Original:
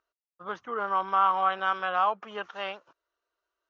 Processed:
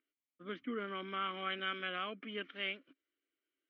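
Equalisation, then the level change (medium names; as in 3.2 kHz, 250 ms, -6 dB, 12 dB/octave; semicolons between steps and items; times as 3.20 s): vowel filter i; distance through air 210 m; +14.0 dB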